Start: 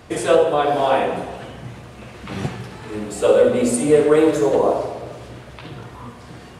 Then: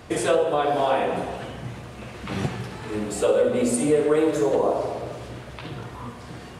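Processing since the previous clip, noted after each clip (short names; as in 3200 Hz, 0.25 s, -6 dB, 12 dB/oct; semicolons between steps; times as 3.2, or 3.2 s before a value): compressor 2:1, threshold -21 dBFS, peak gain reduction 7 dB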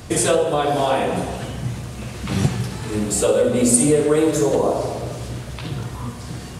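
tone controls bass +8 dB, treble +11 dB; gain +2 dB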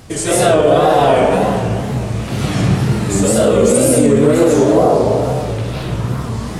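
digital reverb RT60 2.1 s, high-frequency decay 0.35×, pre-delay 0.105 s, DRR -9 dB; wow and flutter 130 cents; maximiser -1 dB; gain -1 dB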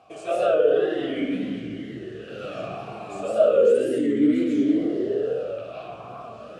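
vowel sweep a-i 0.33 Hz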